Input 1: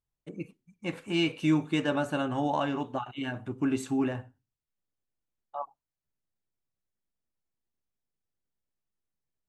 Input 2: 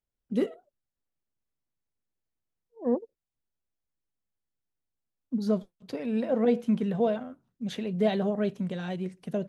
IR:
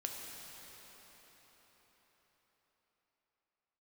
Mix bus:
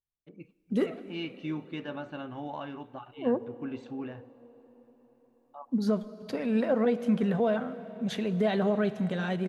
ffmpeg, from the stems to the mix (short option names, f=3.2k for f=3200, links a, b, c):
-filter_complex "[0:a]lowpass=f=4.6k:w=0.5412,lowpass=f=4.6k:w=1.3066,volume=-10.5dB,asplit=2[a][b];[b]volume=-17.5dB[c];[1:a]adynamicequalizer=threshold=0.00447:dfrequency=1400:dqfactor=1.1:tfrequency=1400:tqfactor=1.1:attack=5:release=100:ratio=0.375:range=3.5:mode=boostabove:tftype=bell,adelay=400,volume=0dB,asplit=2[d][e];[e]volume=-11dB[f];[2:a]atrim=start_sample=2205[g];[c][f]amix=inputs=2:normalize=0[h];[h][g]afir=irnorm=-1:irlink=0[i];[a][d][i]amix=inputs=3:normalize=0,alimiter=limit=-17dB:level=0:latency=1:release=148"